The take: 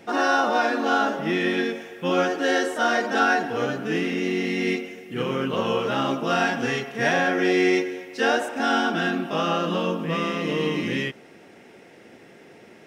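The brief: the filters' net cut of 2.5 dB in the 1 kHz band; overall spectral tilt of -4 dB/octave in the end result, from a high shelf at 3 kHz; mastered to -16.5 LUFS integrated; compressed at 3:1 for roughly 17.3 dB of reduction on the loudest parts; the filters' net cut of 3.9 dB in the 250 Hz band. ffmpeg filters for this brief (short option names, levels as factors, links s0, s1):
-af "equalizer=f=250:t=o:g=-5,equalizer=f=1000:t=o:g=-4,highshelf=f=3000:g=3.5,acompressor=threshold=0.00708:ratio=3,volume=15.8"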